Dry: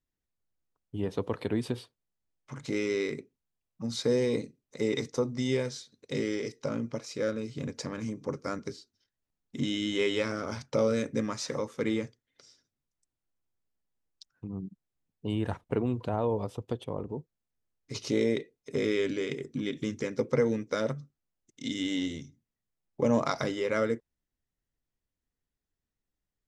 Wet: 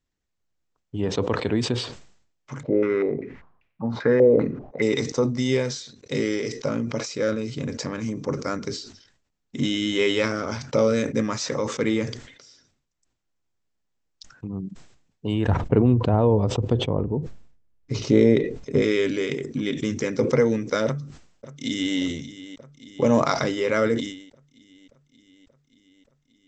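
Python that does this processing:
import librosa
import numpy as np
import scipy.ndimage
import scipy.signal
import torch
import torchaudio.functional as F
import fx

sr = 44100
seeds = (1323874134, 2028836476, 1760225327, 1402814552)

y = fx.filter_held_lowpass(x, sr, hz=5.1, low_hz=590.0, high_hz=2400.0, at=(2.63, 4.82))
y = fx.tilt_eq(y, sr, slope=-2.5, at=(15.48, 18.82))
y = fx.echo_throw(y, sr, start_s=20.85, length_s=1.12, ms=580, feedback_pct=70, wet_db=-15.0)
y = scipy.signal.sosfilt(scipy.signal.cheby1(6, 1.0, 7800.0, 'lowpass', fs=sr, output='sos'), y)
y = fx.sustainer(y, sr, db_per_s=83.0)
y = F.gain(torch.from_numpy(y), 7.0).numpy()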